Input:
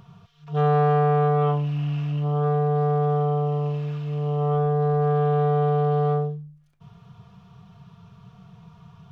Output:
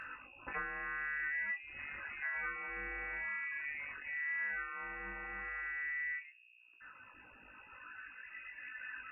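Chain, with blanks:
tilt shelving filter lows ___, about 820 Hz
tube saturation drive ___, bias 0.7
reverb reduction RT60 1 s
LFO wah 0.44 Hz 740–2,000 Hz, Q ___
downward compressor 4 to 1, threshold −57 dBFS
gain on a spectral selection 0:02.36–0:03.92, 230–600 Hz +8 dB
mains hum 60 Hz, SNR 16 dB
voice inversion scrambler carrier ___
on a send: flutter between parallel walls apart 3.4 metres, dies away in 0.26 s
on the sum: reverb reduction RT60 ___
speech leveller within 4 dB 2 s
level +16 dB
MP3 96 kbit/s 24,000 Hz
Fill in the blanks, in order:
−3.5 dB, 30 dB, 2.5, 2,700 Hz, 0.5 s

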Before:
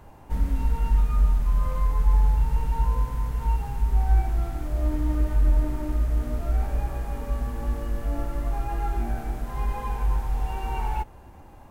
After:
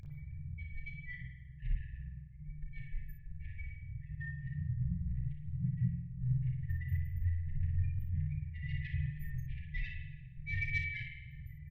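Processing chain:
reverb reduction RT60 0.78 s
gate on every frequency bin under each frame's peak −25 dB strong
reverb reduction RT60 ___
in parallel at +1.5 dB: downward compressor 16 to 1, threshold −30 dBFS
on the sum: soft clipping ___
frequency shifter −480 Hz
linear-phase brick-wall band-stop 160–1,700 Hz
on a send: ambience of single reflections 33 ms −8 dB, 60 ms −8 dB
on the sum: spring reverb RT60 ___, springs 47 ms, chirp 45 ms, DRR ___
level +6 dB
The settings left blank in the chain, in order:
0.7 s, −24.5 dBFS, 1 s, 1.5 dB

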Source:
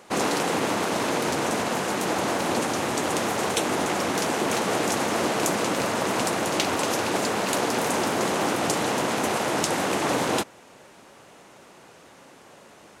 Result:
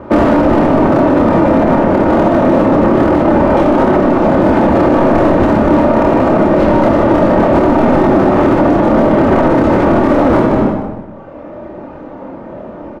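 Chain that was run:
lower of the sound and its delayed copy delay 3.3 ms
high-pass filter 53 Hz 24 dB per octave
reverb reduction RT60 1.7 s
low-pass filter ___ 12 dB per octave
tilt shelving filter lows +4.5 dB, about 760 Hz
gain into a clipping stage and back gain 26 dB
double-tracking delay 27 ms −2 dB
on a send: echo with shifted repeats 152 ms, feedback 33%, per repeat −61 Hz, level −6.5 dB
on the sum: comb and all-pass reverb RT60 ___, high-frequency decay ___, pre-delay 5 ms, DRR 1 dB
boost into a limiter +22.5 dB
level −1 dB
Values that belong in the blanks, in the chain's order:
1,000 Hz, 1.2 s, 0.55×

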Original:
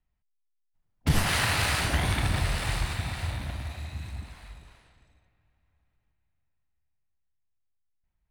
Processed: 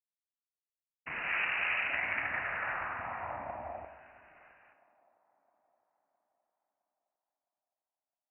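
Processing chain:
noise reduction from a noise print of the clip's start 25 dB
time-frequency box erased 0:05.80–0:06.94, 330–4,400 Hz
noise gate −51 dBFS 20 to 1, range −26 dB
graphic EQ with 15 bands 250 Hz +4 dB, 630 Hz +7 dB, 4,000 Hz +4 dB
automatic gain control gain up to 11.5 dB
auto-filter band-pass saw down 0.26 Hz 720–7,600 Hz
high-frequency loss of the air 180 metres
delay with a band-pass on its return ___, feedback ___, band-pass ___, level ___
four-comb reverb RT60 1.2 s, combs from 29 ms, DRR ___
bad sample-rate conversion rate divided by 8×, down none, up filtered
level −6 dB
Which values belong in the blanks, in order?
662 ms, 49%, 480 Hz, −21 dB, 8 dB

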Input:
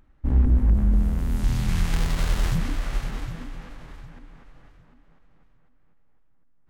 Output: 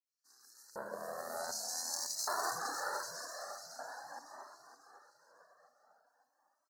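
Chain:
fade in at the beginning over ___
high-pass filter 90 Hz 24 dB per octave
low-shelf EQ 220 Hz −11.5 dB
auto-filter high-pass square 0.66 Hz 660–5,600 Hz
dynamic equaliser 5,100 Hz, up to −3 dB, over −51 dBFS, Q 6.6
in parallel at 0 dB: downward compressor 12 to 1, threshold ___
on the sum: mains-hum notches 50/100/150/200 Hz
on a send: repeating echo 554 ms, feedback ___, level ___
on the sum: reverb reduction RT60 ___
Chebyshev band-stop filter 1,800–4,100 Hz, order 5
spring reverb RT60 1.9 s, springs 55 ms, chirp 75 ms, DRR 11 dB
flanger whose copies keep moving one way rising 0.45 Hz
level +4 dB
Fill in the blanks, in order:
0.50 s, −50 dBFS, 37%, −8.5 dB, 0.56 s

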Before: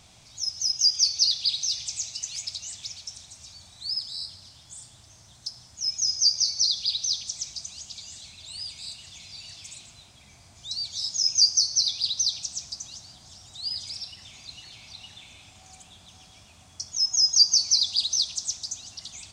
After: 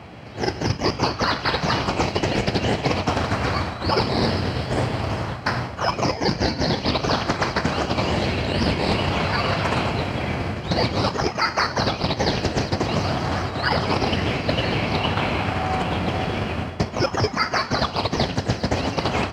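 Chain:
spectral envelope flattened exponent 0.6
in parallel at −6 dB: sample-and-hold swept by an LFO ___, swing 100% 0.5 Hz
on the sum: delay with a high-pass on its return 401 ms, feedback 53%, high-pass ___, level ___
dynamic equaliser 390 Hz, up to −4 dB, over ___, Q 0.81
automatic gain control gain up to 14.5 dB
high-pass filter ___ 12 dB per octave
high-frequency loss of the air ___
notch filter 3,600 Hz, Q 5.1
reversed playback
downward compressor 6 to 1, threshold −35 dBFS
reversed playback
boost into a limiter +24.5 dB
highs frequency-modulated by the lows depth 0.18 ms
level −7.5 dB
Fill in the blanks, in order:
25×, 5,100 Hz, −16.5 dB, −39 dBFS, 73 Hz, 420 metres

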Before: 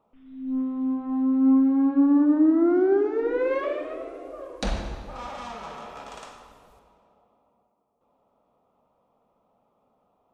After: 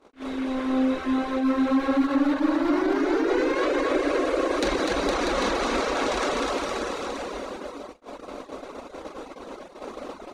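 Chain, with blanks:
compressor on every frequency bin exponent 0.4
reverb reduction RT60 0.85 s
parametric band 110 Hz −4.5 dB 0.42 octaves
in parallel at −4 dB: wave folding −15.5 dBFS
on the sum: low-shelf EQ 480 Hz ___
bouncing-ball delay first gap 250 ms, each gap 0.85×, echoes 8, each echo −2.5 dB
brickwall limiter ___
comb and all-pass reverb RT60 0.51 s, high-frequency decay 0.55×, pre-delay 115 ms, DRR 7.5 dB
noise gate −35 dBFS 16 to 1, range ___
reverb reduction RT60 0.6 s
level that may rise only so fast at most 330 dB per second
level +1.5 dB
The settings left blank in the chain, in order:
−11.5 dB, −15.5 dBFS, −30 dB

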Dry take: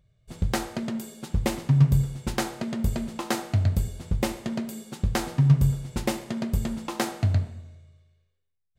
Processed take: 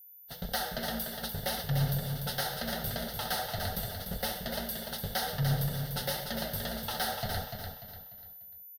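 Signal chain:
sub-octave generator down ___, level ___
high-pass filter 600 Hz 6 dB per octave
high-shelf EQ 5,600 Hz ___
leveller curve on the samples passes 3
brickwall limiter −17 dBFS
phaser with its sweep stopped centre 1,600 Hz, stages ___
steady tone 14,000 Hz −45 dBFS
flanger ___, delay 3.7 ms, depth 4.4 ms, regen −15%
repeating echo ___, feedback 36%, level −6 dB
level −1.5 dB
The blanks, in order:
2 octaves, 0 dB, +9 dB, 8, 1.9 Hz, 295 ms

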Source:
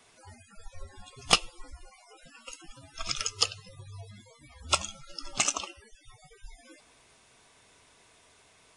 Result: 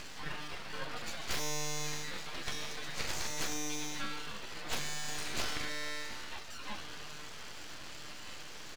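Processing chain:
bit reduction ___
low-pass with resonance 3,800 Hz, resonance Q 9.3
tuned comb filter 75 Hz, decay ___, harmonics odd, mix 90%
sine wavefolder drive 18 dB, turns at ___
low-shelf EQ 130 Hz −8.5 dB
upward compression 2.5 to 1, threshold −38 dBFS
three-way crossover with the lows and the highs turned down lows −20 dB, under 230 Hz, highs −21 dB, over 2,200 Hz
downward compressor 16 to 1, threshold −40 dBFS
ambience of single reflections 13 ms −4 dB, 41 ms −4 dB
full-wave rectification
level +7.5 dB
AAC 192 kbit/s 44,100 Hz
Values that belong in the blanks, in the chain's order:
10 bits, 1.4 s, −15 dBFS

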